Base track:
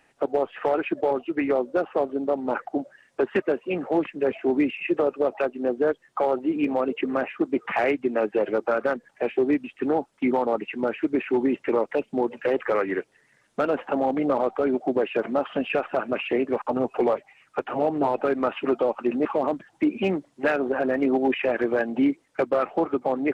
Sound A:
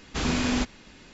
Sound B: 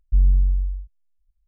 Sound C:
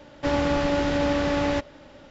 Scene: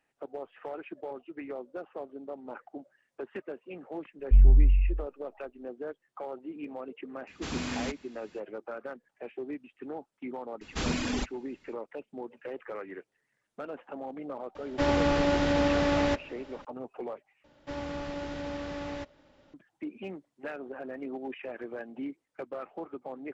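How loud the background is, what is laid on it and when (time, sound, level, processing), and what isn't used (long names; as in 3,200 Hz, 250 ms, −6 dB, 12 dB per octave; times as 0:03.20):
base track −16 dB
0:04.19: mix in B −1 dB
0:07.27: mix in A −8.5 dB + high-pass filter 56 Hz
0:10.61: mix in A −3 dB + reverb reduction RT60 1.6 s
0:14.55: mix in C −2 dB
0:17.44: overwrite with C −13.5 dB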